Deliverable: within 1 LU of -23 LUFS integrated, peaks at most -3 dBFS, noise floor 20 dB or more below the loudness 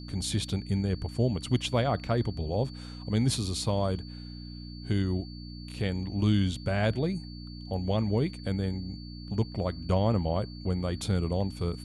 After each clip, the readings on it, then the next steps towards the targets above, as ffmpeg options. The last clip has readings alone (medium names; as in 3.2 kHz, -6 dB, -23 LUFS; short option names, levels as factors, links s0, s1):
hum 60 Hz; highest harmonic 300 Hz; hum level -39 dBFS; steady tone 4.5 kHz; tone level -49 dBFS; loudness -30.0 LUFS; peak level -13.5 dBFS; loudness target -23.0 LUFS
-> -af "bandreject=f=60:t=h:w=4,bandreject=f=120:t=h:w=4,bandreject=f=180:t=h:w=4,bandreject=f=240:t=h:w=4,bandreject=f=300:t=h:w=4"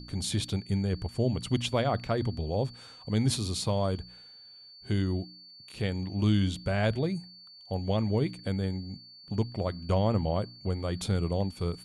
hum not found; steady tone 4.5 kHz; tone level -49 dBFS
-> -af "bandreject=f=4500:w=30"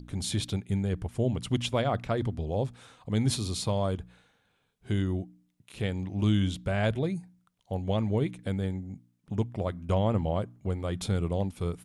steady tone not found; loudness -30.5 LUFS; peak level -14.5 dBFS; loudness target -23.0 LUFS
-> -af "volume=2.37"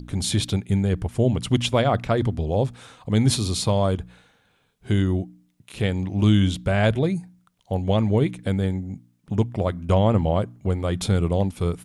loudness -23.0 LUFS; peak level -7.0 dBFS; noise floor -65 dBFS